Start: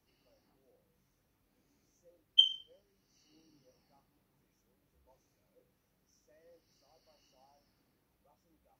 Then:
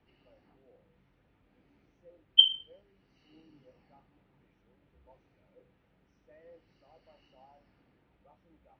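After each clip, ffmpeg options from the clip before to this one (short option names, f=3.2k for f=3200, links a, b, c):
-af "lowpass=f=3.2k:w=0.5412,lowpass=f=3.2k:w=1.3066,bandreject=f=1.1k:w=17,volume=8dB"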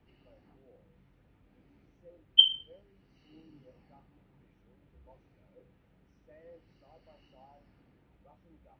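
-af "lowshelf=f=290:g=6.5"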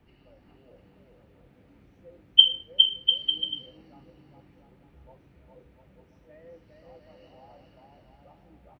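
-af "aecho=1:1:410|697|897.9|1039|1137:0.631|0.398|0.251|0.158|0.1,volume=4.5dB"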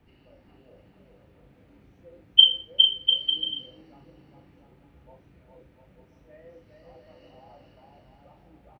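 -filter_complex "[0:a]asplit=2[a][b];[b]adelay=38,volume=-5.5dB[c];[a][c]amix=inputs=2:normalize=0"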